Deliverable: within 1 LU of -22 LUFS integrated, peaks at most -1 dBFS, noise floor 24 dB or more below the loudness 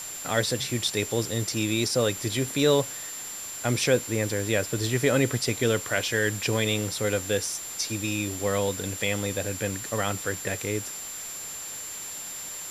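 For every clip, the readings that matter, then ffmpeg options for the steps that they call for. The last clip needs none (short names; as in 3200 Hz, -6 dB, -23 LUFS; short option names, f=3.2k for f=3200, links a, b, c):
steady tone 7300 Hz; tone level -36 dBFS; noise floor -37 dBFS; noise floor target -51 dBFS; loudness -27.0 LUFS; peak -9.0 dBFS; loudness target -22.0 LUFS
-> -af "bandreject=f=7.3k:w=30"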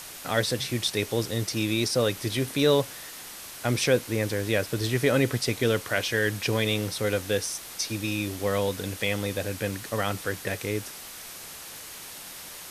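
steady tone none; noise floor -42 dBFS; noise floor target -51 dBFS
-> -af "afftdn=nr=9:nf=-42"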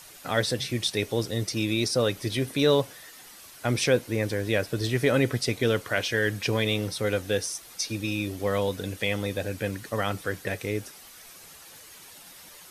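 noise floor -48 dBFS; noise floor target -51 dBFS
-> -af "afftdn=nr=6:nf=-48"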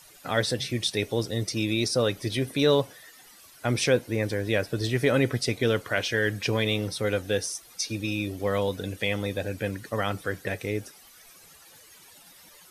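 noise floor -53 dBFS; loudness -27.0 LUFS; peak -9.5 dBFS; loudness target -22.0 LUFS
-> -af "volume=5dB"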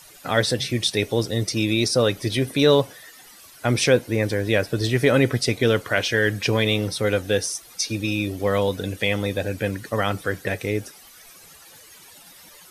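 loudness -22.0 LUFS; peak -4.5 dBFS; noise floor -48 dBFS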